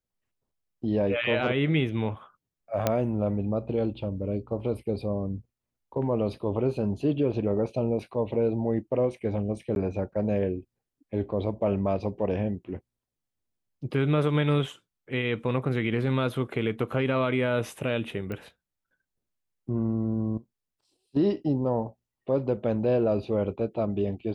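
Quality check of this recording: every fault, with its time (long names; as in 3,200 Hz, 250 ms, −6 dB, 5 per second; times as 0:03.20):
0:02.87: click −9 dBFS
0:09.75–0:09.76: drop-out 11 ms
0:18.32: click −23 dBFS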